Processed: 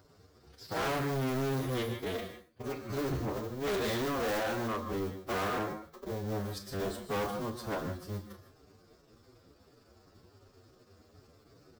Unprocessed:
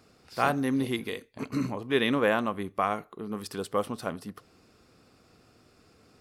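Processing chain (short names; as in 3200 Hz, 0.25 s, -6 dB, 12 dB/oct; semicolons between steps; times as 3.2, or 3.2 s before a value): cycle switcher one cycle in 2, muted; non-linear reverb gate 0.1 s rising, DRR 8.5 dB; time stretch by phase-locked vocoder 1.9×; fifteen-band EQ 100 Hz +8 dB, 400 Hz +5 dB, 2500 Hz -7 dB, 10000 Hz -10 dB; early reflections 31 ms -10 dB, 44 ms -14.5 dB; overloaded stage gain 30 dB; high shelf 8400 Hz +7.5 dB; notch 880 Hz, Q 17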